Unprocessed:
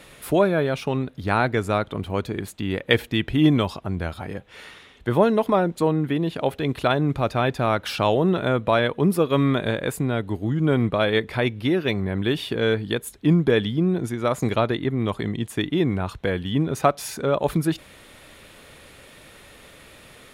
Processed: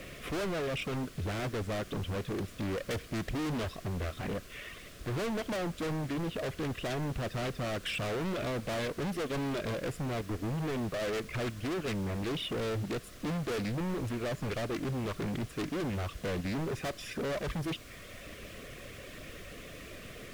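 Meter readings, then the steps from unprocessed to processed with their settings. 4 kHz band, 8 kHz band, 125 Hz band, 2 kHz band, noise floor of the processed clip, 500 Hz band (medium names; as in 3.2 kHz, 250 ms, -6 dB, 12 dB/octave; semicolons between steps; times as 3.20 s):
-10.0 dB, -7.0 dB, -11.0 dB, -11.0 dB, -49 dBFS, -13.0 dB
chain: reverb removal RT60 0.85 s; peaking EQ 1.4 kHz -9 dB 0.51 oct; in parallel at +1 dB: level held to a coarse grid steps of 19 dB; on the sum: Savitzky-Golay filter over 25 samples; hard clipper -32 dBFS, distortion 0 dB; added noise pink -50 dBFS; Butterworth band-stop 870 Hz, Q 2.7; loudspeaker Doppler distortion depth 0.41 ms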